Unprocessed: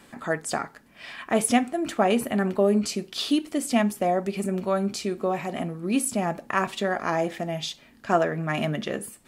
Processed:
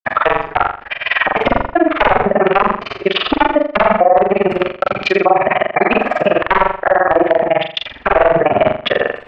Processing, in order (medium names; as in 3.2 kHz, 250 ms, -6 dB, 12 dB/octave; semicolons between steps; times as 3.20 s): spectral replace 5.64–6.35 s, 620–2400 Hz both; integer overflow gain 15.5 dB; FFT filter 120 Hz 0 dB, 170 Hz -17 dB, 590 Hz +5 dB, 2.7 kHz +11 dB, 4.6 kHz +2 dB; granulator 41 ms, grains 20 per s; trance gate "xxxxx.xxxxxx.xx" 112 bpm -60 dB; low-pass that closes with the level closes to 1 kHz, closed at -25 dBFS; distance through air 310 m; flutter echo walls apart 7.2 m, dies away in 0.4 s; loudness maximiser +24.5 dB; trim -1 dB